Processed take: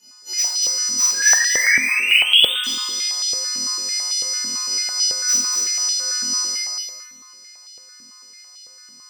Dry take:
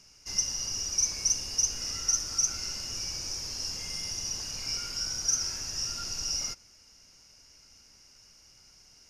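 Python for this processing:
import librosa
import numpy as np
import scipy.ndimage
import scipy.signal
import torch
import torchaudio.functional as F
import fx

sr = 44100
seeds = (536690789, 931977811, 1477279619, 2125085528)

p1 = fx.freq_snap(x, sr, grid_st=3)
p2 = fx.hpss(p1, sr, part='percussive', gain_db=-4)
p3 = (np.mod(10.0 ** (10.0 / 20.0) * p2 + 1.0, 2.0) - 1.0) / 10.0 ** (10.0 / 20.0)
p4 = p2 + F.gain(torch.from_numpy(p3), -11.0).numpy()
p5 = fx.brickwall_bandstop(p4, sr, low_hz=2500.0, high_hz=7900.0, at=(1.48, 2.64))
p6 = fx.spec_paint(p5, sr, seeds[0], shape='rise', start_s=1.14, length_s=1.39, low_hz=1600.0, high_hz=3700.0, level_db=-23.0)
p7 = p6 + fx.echo_feedback(p6, sr, ms=237, feedback_pct=30, wet_db=-4, dry=0)
p8 = fx.room_shoebox(p7, sr, seeds[1], volume_m3=510.0, walls='mixed', distance_m=4.6)
p9 = fx.filter_held_highpass(p8, sr, hz=9.0, low_hz=250.0, high_hz=3100.0)
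y = F.gain(torch.from_numpy(p9), -10.0).numpy()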